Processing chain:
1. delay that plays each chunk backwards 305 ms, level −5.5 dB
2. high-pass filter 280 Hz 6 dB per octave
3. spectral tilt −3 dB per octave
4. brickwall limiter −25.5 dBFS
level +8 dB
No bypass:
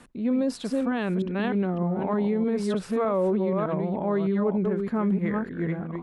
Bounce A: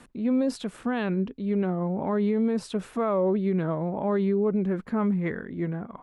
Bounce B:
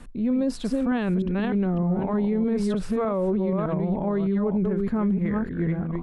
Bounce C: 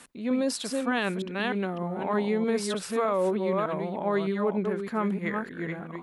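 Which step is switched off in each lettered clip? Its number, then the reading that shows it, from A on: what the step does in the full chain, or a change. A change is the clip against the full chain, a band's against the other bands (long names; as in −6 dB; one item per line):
1, change in momentary loudness spread +4 LU
2, 125 Hz band +4.0 dB
3, 4 kHz band +8.0 dB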